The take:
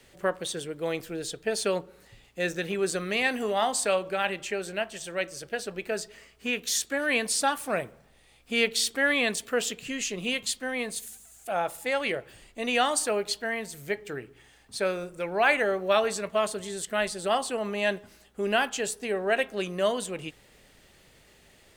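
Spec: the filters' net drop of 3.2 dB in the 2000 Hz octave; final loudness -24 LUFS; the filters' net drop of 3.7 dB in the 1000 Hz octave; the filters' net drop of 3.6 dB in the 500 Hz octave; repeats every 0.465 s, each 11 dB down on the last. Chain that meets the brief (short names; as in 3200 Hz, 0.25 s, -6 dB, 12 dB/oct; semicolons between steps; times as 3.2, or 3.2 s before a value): bell 500 Hz -3.5 dB; bell 1000 Hz -3 dB; bell 2000 Hz -3 dB; feedback echo 0.465 s, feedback 28%, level -11 dB; gain +6.5 dB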